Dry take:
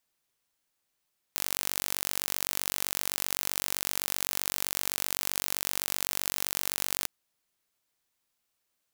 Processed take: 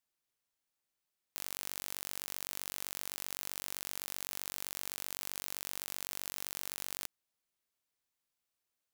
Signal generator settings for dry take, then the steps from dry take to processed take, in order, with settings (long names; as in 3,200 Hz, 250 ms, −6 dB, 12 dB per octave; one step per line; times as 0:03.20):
impulse train 47.8 per second, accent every 0, −3 dBFS 5.70 s
output level in coarse steps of 11 dB